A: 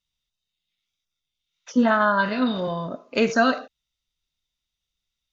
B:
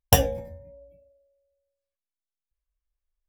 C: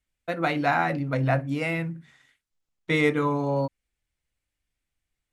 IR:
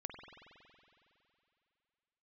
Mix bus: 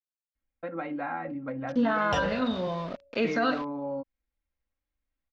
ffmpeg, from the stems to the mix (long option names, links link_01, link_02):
-filter_complex "[0:a]bandreject=frequency=50:width_type=h:width=6,bandreject=frequency=100:width_type=h:width=6,bandreject=frequency=150:width_type=h:width=6,bandreject=frequency=200:width_type=h:width=6,bandreject=frequency=250:width_type=h:width=6,bandreject=frequency=300:width_type=h:width=6,bandreject=frequency=350:width_type=h:width=6,aeval=exprs='val(0)*gte(abs(val(0)),0.0178)':channel_layout=same,volume=-4dB[link_01];[1:a]lowshelf=frequency=170:gain=-10.5,adelay=2000,volume=-1dB[link_02];[2:a]lowpass=1700,aecho=1:1:3.7:0.66,acompressor=threshold=-30dB:ratio=2,adelay=350,volume=-5dB[link_03];[link_01][link_02][link_03]amix=inputs=3:normalize=0,lowpass=frequency=4600:width=0.5412,lowpass=frequency=4600:width=1.3066,alimiter=limit=-17dB:level=0:latency=1:release=28"